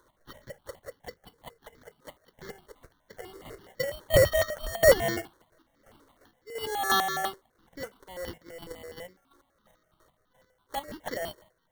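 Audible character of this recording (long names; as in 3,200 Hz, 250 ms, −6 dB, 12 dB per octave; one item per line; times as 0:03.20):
chopped level 2.9 Hz, depth 60%, duty 30%
aliases and images of a low sample rate 2,500 Hz, jitter 0%
notches that jump at a steady rate 12 Hz 710–2,800 Hz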